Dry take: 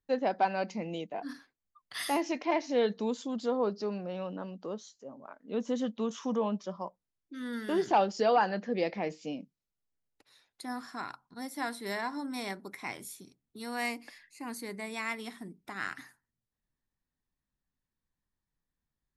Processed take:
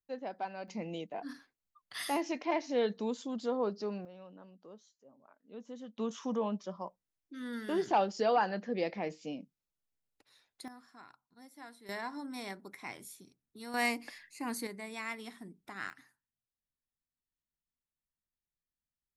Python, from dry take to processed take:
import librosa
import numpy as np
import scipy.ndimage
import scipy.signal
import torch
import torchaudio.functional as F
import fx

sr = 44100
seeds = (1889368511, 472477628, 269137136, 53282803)

y = fx.gain(x, sr, db=fx.steps((0.0, -11.0), (0.68, -3.0), (4.05, -14.5), (5.98, -3.0), (10.68, -15.5), (11.89, -5.0), (13.74, 2.5), (14.67, -4.5), (15.9, -12.0)))